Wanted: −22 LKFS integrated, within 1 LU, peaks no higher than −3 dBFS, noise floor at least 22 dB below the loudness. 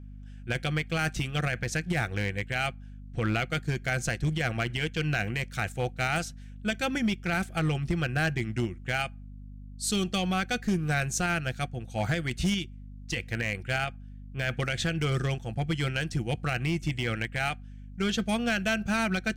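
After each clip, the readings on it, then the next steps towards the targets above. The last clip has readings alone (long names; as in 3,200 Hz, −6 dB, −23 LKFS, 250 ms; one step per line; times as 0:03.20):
share of clipped samples 0.9%; peaks flattened at −20.5 dBFS; mains hum 50 Hz; hum harmonics up to 250 Hz; level of the hum −42 dBFS; integrated loudness −30.0 LKFS; sample peak −20.5 dBFS; target loudness −22.0 LKFS
→ clipped peaks rebuilt −20.5 dBFS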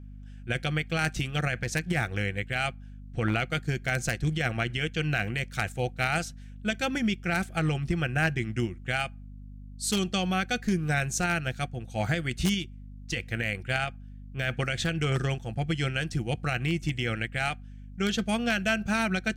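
share of clipped samples 0.0%; mains hum 50 Hz; hum harmonics up to 250 Hz; level of the hum −42 dBFS
→ mains-hum notches 50/100/150/200/250 Hz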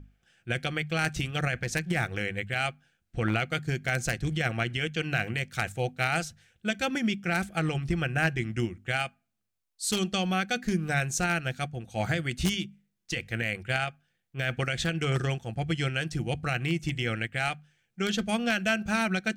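mains hum none found; integrated loudness −29.5 LKFS; sample peak −11.0 dBFS; target loudness −22.0 LKFS
→ level +7.5 dB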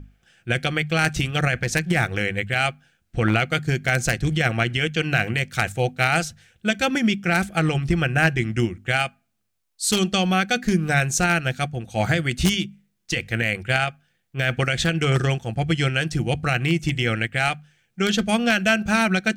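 integrated loudness −22.0 LKFS; sample peak −3.5 dBFS; background noise floor −72 dBFS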